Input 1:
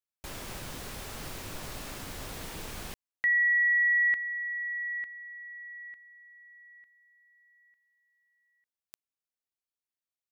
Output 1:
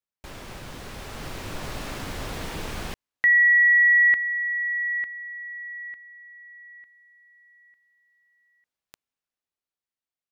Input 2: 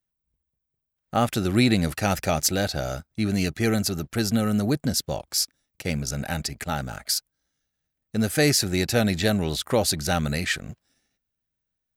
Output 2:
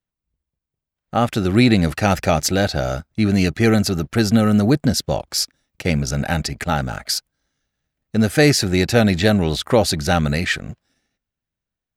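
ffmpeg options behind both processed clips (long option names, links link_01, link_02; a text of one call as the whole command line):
ffmpeg -i in.wav -af "highshelf=frequency=6500:gain=-11,dynaudnorm=framelen=150:gausssize=17:maxgain=7dB,volume=1.5dB" out.wav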